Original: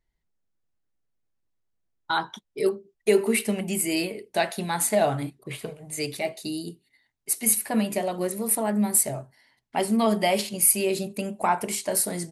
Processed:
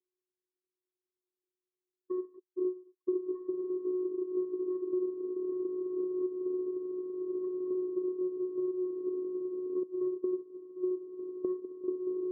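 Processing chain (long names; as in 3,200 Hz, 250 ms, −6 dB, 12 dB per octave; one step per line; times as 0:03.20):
feedback delay with all-pass diffusion 1,336 ms, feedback 63%, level −8 dB
channel vocoder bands 4, square 366 Hz
0:09.83–0:11.84: noise gate −26 dBFS, range −10 dB
downward compressor 6 to 1, threshold −30 dBFS, peak gain reduction 16 dB
inverse Chebyshev low-pass filter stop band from 2,500 Hz, stop band 60 dB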